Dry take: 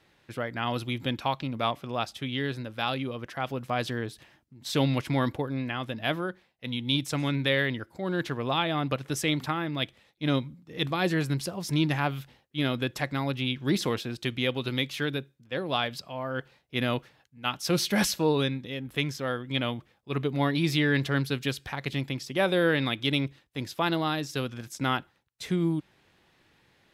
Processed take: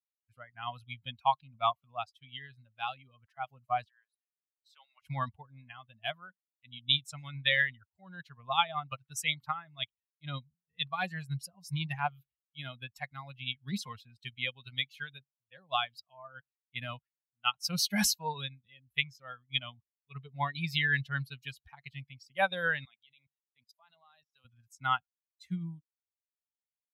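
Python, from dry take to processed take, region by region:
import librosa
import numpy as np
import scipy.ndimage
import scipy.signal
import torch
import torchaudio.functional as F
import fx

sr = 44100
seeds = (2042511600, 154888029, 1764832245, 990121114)

y = fx.chain(x, sr, fx.highpass(hz=1100.0, slope=12),
    fx.high_shelf(hz=2000.0, db=-11.0), at=(3.84, 5.02))
y = fx.chain(y, sr, fx.highpass(hz=200.0, slope=12),
    fx.peak_eq(hz=320.0, db=-7.5, octaves=0.48),
    fx.level_steps(step_db=20), at=(22.85, 24.45))
y = fx.bin_expand(y, sr, power=2.0)
y = fx.curve_eq(y, sr, hz=(210.0, 310.0, 750.0), db=(0, -25, 6))
y = fx.upward_expand(y, sr, threshold_db=-43.0, expansion=1.5)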